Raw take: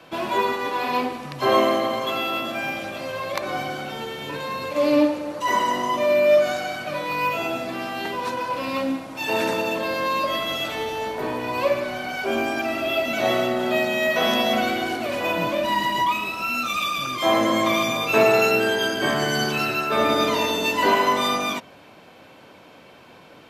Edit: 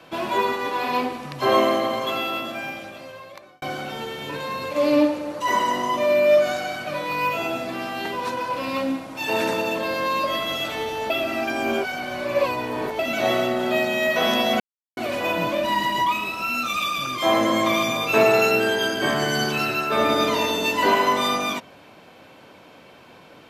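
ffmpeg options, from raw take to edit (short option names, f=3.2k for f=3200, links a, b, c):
-filter_complex "[0:a]asplit=6[a][b][c][d][e][f];[a]atrim=end=3.62,asetpts=PTS-STARTPTS,afade=t=out:st=2.13:d=1.49[g];[b]atrim=start=3.62:end=11.102,asetpts=PTS-STARTPTS,afade=t=in:d=0.004:c=hsin[h];[c]atrim=start=11.098:end=12.992,asetpts=PTS-STARTPTS,areverse[i];[d]atrim=start=12.988:end=14.6,asetpts=PTS-STARTPTS,afade=t=out:st=1.608:d=0.004:c=hsin[j];[e]atrim=start=14.6:end=14.97,asetpts=PTS-STARTPTS,volume=0[k];[f]atrim=start=14.97,asetpts=PTS-STARTPTS,afade=t=in:d=0.004:c=hsin[l];[g][h]concat=n=2:v=0:a=1[m];[m][i]acrossfade=d=0.004:c1=hsin:c2=hsin[n];[j][k][l]concat=n=3:v=0:a=1[o];[n][o]acrossfade=d=0.004:c1=hsin:c2=hsin"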